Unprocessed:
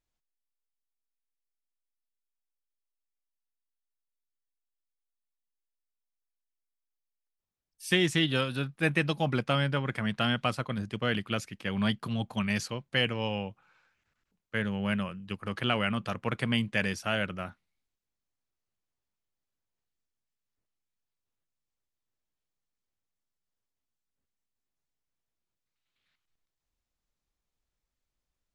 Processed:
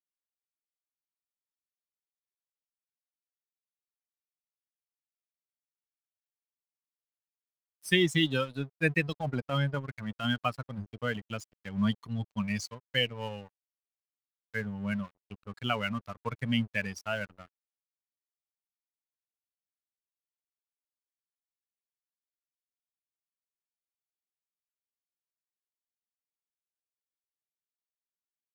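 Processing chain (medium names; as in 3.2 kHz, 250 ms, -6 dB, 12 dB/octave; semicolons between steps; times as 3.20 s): expander on every frequency bin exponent 2; 9.07–10.25 s: transient shaper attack -8 dB, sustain -4 dB; crossover distortion -52 dBFS; trim +3.5 dB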